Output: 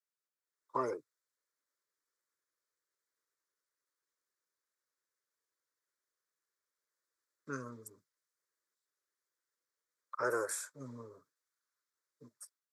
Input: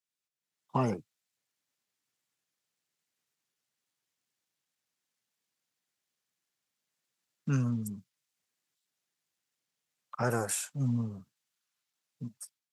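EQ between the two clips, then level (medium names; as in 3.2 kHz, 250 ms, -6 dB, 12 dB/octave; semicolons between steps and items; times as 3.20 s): high-pass 340 Hz 12 dB/octave; treble shelf 5.2 kHz -8.5 dB; static phaser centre 760 Hz, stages 6; +1.0 dB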